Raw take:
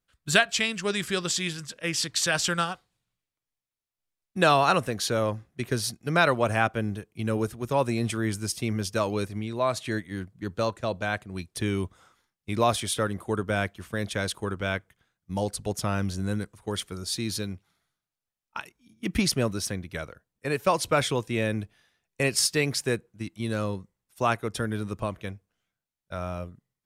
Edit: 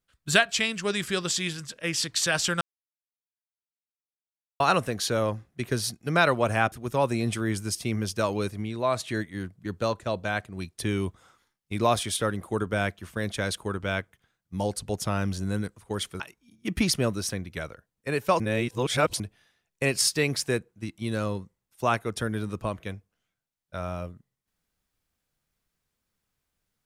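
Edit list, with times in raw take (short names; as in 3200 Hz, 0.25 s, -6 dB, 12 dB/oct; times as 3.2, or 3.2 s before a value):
2.61–4.6 mute
6.72–7.49 cut
16.97–18.58 cut
20.78–21.58 reverse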